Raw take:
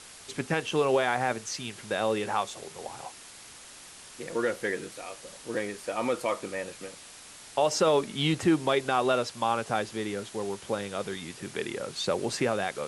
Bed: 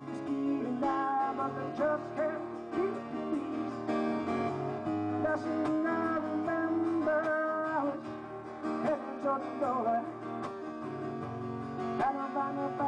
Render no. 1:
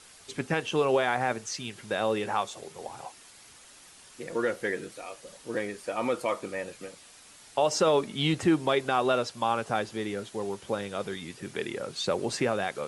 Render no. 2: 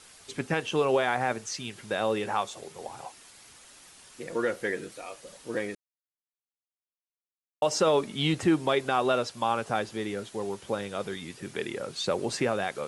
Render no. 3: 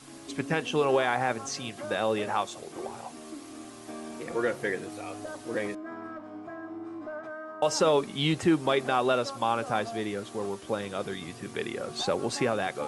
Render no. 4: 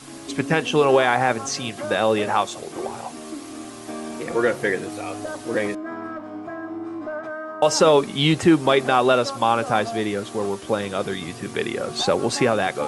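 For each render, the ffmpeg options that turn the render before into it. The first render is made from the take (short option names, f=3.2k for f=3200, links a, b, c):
-af "afftdn=nr=6:nf=-48"
-filter_complex "[0:a]asplit=3[a][b][c];[a]atrim=end=5.75,asetpts=PTS-STARTPTS,afade=t=out:st=5.746:d=0.004:c=hsin[d];[b]atrim=start=5.75:end=7.62,asetpts=PTS-STARTPTS,volume=0[e];[c]atrim=start=7.62,asetpts=PTS-STARTPTS,afade=t=in:d=0.004:c=hsin[f];[d][e][f]concat=n=3:v=0:a=1"
-filter_complex "[1:a]volume=-9dB[a];[0:a][a]amix=inputs=2:normalize=0"
-af "volume=8dB"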